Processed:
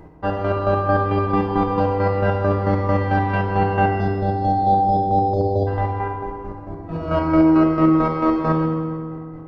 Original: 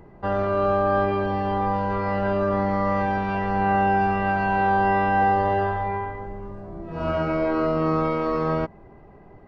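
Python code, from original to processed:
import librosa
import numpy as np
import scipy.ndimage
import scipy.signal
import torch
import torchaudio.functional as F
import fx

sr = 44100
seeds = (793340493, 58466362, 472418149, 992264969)

y = fx.comb(x, sr, ms=5.9, depth=0.99, at=(1.26, 1.8))
y = fx.spec_erase(y, sr, start_s=3.91, length_s=1.76, low_hz=790.0, high_hz=3300.0)
y = fx.chopper(y, sr, hz=4.5, depth_pct=65, duty_pct=35)
y = fx.rev_fdn(y, sr, rt60_s=2.2, lf_ratio=1.25, hf_ratio=0.6, size_ms=19.0, drr_db=0.0)
y = y * librosa.db_to_amplitude(3.5)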